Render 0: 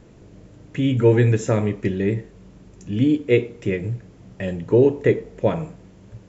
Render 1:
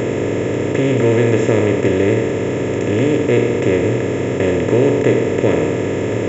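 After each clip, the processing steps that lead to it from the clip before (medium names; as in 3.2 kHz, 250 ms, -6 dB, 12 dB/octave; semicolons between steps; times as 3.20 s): spectral levelling over time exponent 0.2; band-stop 6 kHz, Q 23; trim -3.5 dB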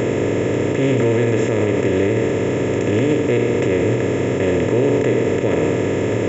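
peak limiter -8 dBFS, peak gain reduction 6.5 dB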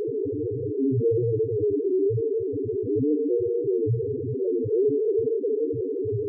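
one-bit delta coder 32 kbps, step -22.5 dBFS; band-passed feedback delay 149 ms, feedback 76%, band-pass 1.3 kHz, level -13 dB; loudest bins only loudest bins 2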